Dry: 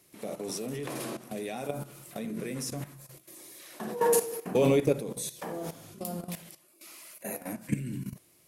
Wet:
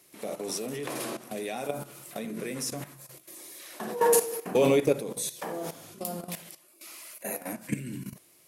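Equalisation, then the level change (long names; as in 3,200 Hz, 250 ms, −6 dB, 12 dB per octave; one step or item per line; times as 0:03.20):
low-shelf EQ 190 Hz −10.5 dB
+3.5 dB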